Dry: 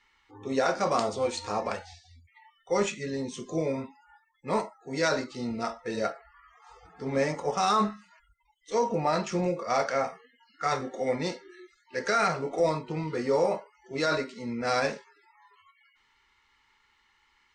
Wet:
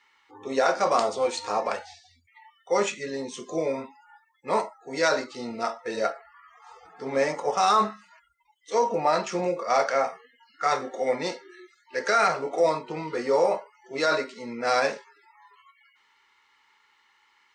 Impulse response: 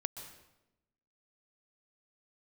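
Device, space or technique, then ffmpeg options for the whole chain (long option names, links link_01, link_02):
filter by subtraction: -filter_complex "[0:a]asplit=2[link_01][link_02];[link_02]lowpass=650,volume=-1[link_03];[link_01][link_03]amix=inputs=2:normalize=0,volume=2.5dB"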